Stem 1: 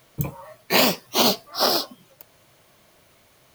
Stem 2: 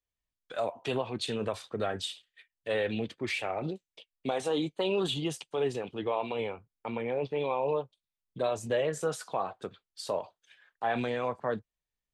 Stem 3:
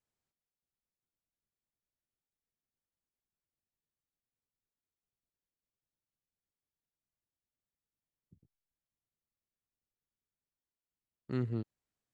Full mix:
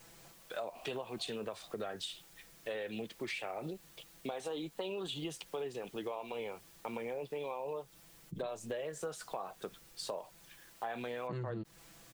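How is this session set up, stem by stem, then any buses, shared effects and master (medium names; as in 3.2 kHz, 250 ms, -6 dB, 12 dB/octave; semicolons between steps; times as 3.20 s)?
-17.0 dB, 0.00 s, no send, vowel filter a; auto duck -17 dB, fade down 1.80 s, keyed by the second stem
-1.0 dB, 0.00 s, no send, high-pass 160 Hz; peaking EQ 260 Hz -4 dB 0.31 oct
+1.5 dB, 0.00 s, no send, comb 6 ms, depth 90%; level flattener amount 50%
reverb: none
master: compression, threshold -37 dBFS, peak gain reduction 11.5 dB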